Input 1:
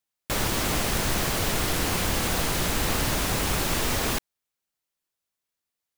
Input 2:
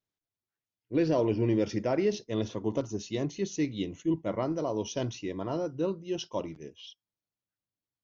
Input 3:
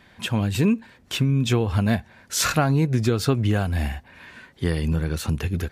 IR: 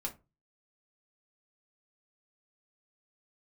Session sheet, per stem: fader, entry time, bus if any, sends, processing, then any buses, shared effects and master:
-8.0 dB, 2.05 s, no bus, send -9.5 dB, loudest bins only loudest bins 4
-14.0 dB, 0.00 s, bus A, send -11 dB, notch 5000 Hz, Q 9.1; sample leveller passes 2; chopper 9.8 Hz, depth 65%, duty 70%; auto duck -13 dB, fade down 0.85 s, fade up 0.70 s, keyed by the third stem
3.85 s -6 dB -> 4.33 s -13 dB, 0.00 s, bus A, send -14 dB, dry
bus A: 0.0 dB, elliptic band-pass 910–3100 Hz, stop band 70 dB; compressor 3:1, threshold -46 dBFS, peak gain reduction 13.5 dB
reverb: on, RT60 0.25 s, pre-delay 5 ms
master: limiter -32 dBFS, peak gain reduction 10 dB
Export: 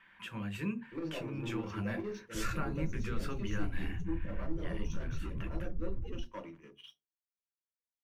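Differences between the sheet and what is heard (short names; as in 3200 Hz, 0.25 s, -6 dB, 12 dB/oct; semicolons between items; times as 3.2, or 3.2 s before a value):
stem 2 -14.0 dB -> -8.0 dB; master: missing limiter -32 dBFS, peak gain reduction 10 dB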